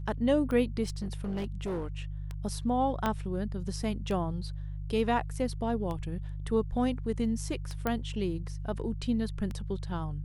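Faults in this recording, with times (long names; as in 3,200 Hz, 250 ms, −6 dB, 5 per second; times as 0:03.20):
mains hum 50 Hz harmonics 3 −37 dBFS
scratch tick 33 1/3 rpm −24 dBFS
0:00.83–0:02.00: clipping −29.5 dBFS
0:03.06: click −15 dBFS
0:07.87: click −16 dBFS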